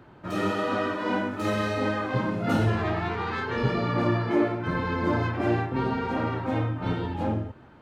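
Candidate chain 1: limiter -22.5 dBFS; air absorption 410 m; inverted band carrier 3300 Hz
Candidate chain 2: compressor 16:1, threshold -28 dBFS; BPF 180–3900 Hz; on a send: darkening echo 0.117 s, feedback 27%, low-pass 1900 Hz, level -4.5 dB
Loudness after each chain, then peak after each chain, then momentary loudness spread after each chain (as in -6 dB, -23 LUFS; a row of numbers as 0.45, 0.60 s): -28.5, -33.0 LUFS; -20.5, -20.0 dBFS; 3, 3 LU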